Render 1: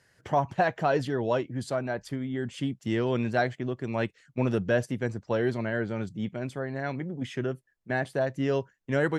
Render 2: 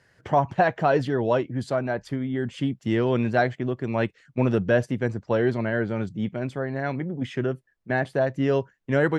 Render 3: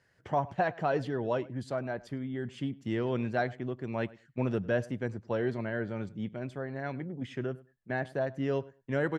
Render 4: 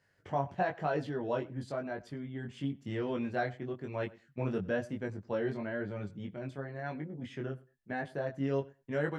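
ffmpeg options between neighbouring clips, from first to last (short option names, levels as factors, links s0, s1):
-af "lowpass=f=3400:p=1,volume=1.68"
-filter_complex "[0:a]asplit=2[s0][s1];[s1]adelay=101,lowpass=f=3000:p=1,volume=0.0944,asplit=2[s2][s3];[s3]adelay=101,lowpass=f=3000:p=1,volume=0.17[s4];[s0][s2][s4]amix=inputs=3:normalize=0,volume=0.376"
-af "flanger=delay=19.5:depth=2.6:speed=1"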